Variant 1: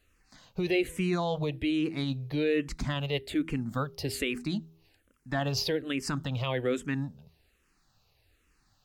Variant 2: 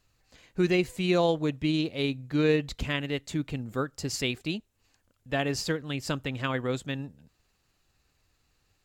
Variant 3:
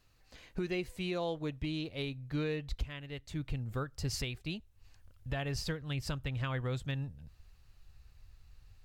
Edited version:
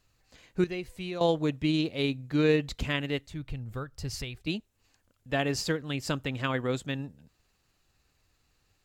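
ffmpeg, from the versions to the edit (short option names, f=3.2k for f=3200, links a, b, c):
-filter_complex "[2:a]asplit=2[a][b];[1:a]asplit=3[c][d][e];[c]atrim=end=0.642[f];[a]atrim=start=0.638:end=1.212[g];[d]atrim=start=1.208:end=3.272[h];[b]atrim=start=3.268:end=4.472[i];[e]atrim=start=4.468[j];[f][g]acrossfade=d=0.004:c1=hsin:c2=hsin[k];[k][h]acrossfade=d=0.004:c1=hsin:c2=hsin[l];[l][i]acrossfade=d=0.004:c1=hsin:c2=hsin[m];[m][j]acrossfade=d=0.004:c1=hsin:c2=hsin"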